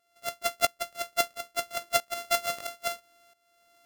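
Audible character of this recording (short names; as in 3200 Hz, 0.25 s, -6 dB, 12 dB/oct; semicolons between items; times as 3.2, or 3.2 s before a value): a buzz of ramps at a fixed pitch in blocks of 64 samples; tremolo saw up 1.5 Hz, depth 85%; Vorbis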